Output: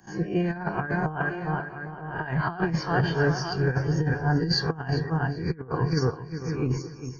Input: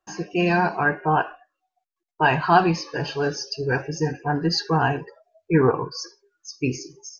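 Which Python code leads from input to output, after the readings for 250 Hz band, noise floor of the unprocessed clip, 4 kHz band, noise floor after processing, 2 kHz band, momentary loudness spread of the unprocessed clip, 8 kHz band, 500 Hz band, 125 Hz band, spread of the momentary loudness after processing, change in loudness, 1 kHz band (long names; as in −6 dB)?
−2.5 dB, −84 dBFS, −3.0 dB, −41 dBFS, −5.0 dB, 13 LU, can't be measured, −5.0 dB, +2.0 dB, 7 LU, −4.5 dB, −9.0 dB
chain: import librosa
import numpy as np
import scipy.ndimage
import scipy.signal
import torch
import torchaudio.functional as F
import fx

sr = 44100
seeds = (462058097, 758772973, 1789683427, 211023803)

p1 = fx.spec_swells(x, sr, rise_s=0.32)
p2 = scipy.signal.savgol_filter(p1, 41, 4, mode='constant')
p3 = fx.peak_eq(p2, sr, hz=300.0, db=-9.5, octaves=2.3)
p4 = p3 + 10.0 ** (-15.5 / 20.0) * np.pad(p3, (int(948 * sr / 1000.0), 0))[:len(p3)]
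p5 = fx.level_steps(p4, sr, step_db=24)
p6 = p4 + F.gain(torch.from_numpy(p5), 0.0).numpy()
p7 = fx.peak_eq(p6, sr, hz=1000.0, db=-14.5, octaves=2.2)
p8 = fx.echo_feedback(p7, sr, ms=395, feedback_pct=37, wet_db=-12)
p9 = fx.over_compress(p8, sr, threshold_db=-32.0, ratio=-0.5)
p10 = fx.band_widen(p9, sr, depth_pct=40)
y = F.gain(torch.from_numpy(p10), 8.0).numpy()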